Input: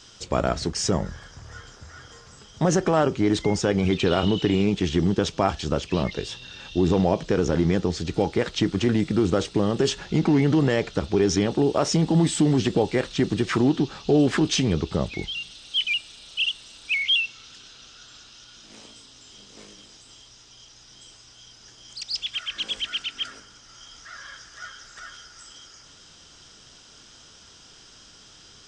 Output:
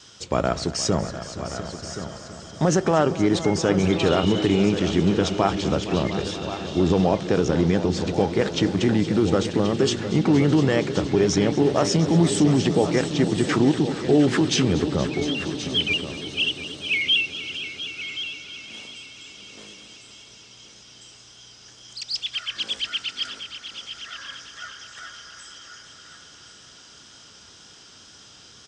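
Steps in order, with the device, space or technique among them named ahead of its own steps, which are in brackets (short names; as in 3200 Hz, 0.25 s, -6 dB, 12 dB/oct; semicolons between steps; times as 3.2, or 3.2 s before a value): multi-head tape echo (multi-head echo 0.234 s, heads all three, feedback 63%, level -17 dB; wow and flutter 20 cents); HPF 71 Hz; echo 1.077 s -11.5 dB; gain +1 dB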